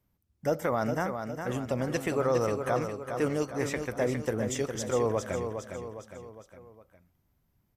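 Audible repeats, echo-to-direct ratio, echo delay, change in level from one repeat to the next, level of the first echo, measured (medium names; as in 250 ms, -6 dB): 4, -6.0 dB, 409 ms, -6.0 dB, -7.0 dB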